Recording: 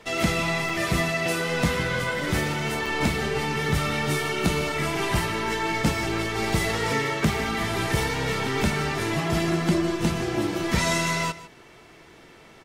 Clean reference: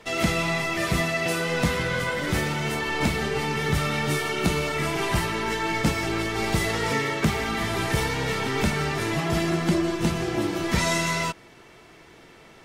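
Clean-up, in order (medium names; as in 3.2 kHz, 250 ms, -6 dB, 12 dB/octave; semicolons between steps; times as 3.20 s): interpolate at 0.69/2.86 s, 3.5 ms; inverse comb 152 ms -16.5 dB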